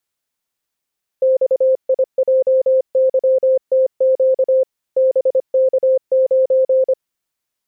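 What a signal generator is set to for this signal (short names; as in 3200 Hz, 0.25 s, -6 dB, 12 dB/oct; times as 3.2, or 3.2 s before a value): Morse "XIJYTQ BK9" 25 wpm 523 Hz -10 dBFS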